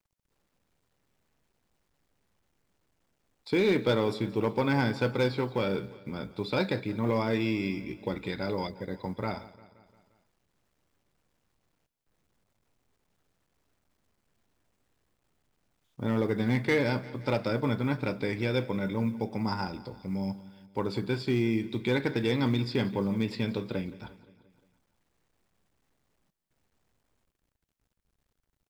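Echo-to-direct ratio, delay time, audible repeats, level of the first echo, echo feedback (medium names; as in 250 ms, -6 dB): -16.5 dB, 175 ms, 4, -18.5 dB, 58%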